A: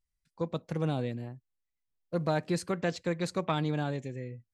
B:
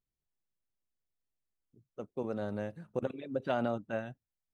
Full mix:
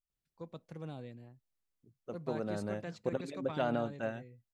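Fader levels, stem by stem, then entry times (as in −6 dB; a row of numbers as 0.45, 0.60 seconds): −13.5, −1.0 decibels; 0.00, 0.10 seconds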